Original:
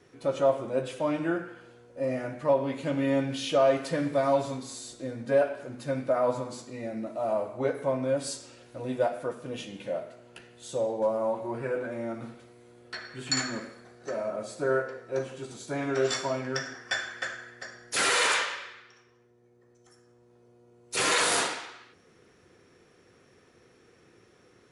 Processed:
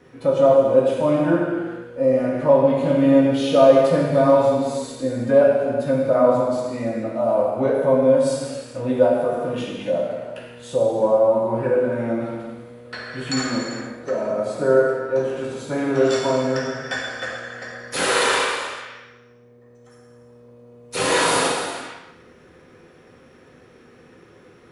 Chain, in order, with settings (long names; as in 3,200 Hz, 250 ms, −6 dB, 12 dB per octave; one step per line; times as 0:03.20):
parametric band 7,000 Hz −9 dB 1.8 octaves
reverb whose tail is shaped and stops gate 490 ms falling, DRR −2 dB
dynamic equaliser 1,900 Hz, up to −6 dB, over −40 dBFS, Q 0.93
level +7 dB